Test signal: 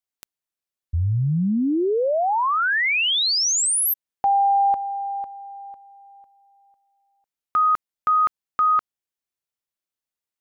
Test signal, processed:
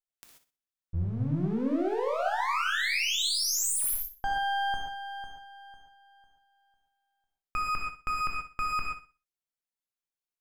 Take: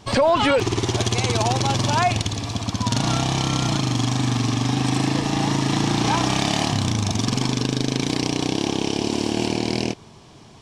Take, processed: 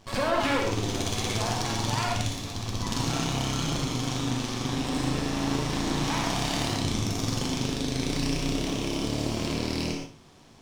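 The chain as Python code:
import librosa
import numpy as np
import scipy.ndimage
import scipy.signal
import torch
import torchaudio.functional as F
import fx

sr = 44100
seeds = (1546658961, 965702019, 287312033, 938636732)

y = np.maximum(x, 0.0)
y = fx.room_flutter(y, sr, wall_m=10.5, rt60_s=0.33)
y = fx.rev_gated(y, sr, seeds[0], gate_ms=160, shape='flat', drr_db=-0.5)
y = y * 10.0 ** (-6.5 / 20.0)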